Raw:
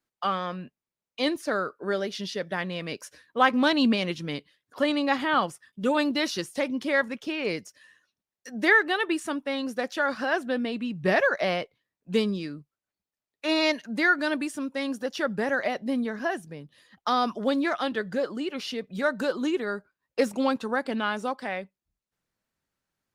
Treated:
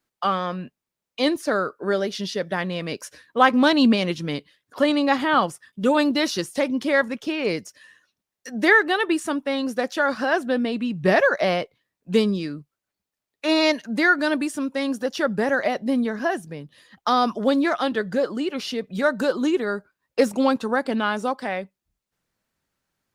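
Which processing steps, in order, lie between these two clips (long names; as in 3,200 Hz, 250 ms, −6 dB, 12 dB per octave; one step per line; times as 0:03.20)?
dynamic equaliser 2,400 Hz, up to −3 dB, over −41 dBFS, Q 0.86
level +5.5 dB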